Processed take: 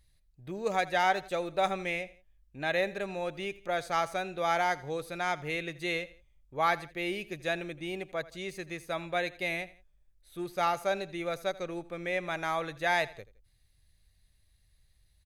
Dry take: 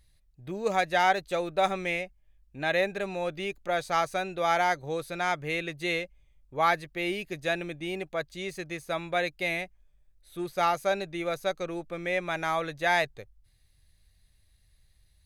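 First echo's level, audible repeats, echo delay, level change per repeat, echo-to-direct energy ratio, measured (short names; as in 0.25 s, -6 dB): -19.0 dB, 2, 83 ms, -8.0 dB, -18.5 dB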